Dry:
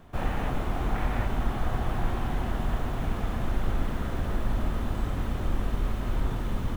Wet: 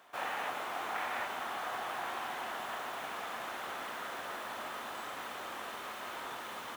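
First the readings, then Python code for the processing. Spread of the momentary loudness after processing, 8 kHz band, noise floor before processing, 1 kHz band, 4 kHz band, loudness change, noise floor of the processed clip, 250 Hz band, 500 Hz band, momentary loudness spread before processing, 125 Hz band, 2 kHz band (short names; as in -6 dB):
5 LU, n/a, -32 dBFS, -1.0 dB, +1.0 dB, -8.0 dB, -44 dBFS, -19.0 dB, -7.0 dB, 2 LU, -33.5 dB, +1.0 dB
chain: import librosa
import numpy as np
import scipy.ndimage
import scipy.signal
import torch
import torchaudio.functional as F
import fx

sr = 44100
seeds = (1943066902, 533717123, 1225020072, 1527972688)

y = scipy.signal.sosfilt(scipy.signal.butter(2, 810.0, 'highpass', fs=sr, output='sos'), x)
y = y * librosa.db_to_amplitude(1.0)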